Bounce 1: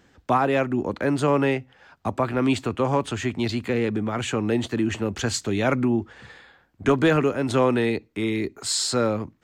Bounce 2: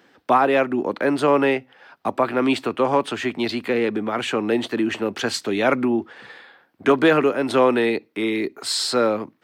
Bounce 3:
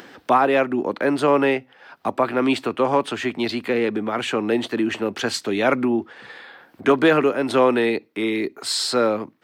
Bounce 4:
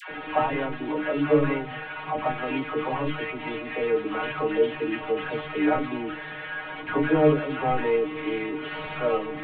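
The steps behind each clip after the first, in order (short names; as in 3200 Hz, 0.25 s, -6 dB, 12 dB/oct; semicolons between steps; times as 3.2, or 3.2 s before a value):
HPF 270 Hz 12 dB/oct; bell 7000 Hz -10.5 dB 0.47 oct; gain +4.5 dB
upward compressor, threshold -33 dBFS
delta modulation 16 kbps, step -26 dBFS; metallic resonator 150 Hz, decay 0.27 s, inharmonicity 0.002; dispersion lows, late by 0.106 s, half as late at 680 Hz; gain +7.5 dB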